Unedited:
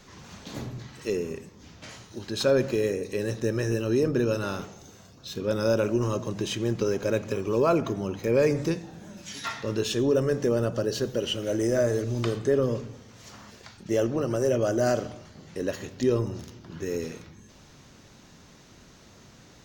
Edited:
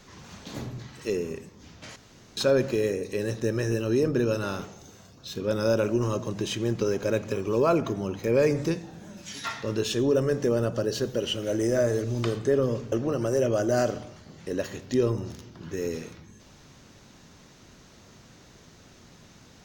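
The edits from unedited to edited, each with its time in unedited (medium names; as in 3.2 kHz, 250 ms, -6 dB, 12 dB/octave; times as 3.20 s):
1.96–2.37 s: room tone
12.92–14.01 s: delete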